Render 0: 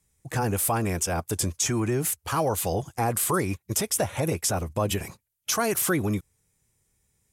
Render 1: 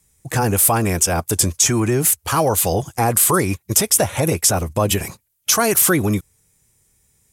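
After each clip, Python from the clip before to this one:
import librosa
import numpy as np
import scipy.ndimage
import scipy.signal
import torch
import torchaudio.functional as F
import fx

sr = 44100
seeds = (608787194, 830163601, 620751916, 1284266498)

y = fx.high_shelf(x, sr, hz=5100.0, db=5.0)
y = F.gain(torch.from_numpy(y), 7.5).numpy()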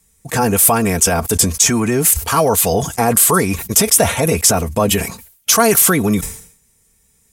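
y = x + 0.47 * np.pad(x, (int(4.4 * sr / 1000.0), 0))[:len(x)]
y = np.clip(y, -10.0 ** (-5.5 / 20.0), 10.0 ** (-5.5 / 20.0))
y = fx.sustainer(y, sr, db_per_s=99.0)
y = F.gain(torch.from_numpy(y), 2.5).numpy()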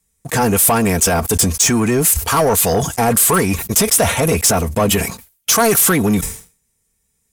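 y = fx.leveller(x, sr, passes=2)
y = F.gain(torch.from_numpy(y), -5.5).numpy()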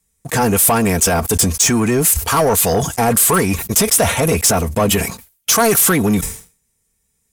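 y = x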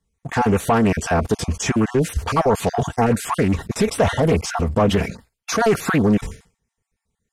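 y = fx.spec_dropout(x, sr, seeds[0], share_pct=21)
y = fx.spacing_loss(y, sr, db_at_10k=20)
y = fx.doppler_dist(y, sr, depth_ms=0.25)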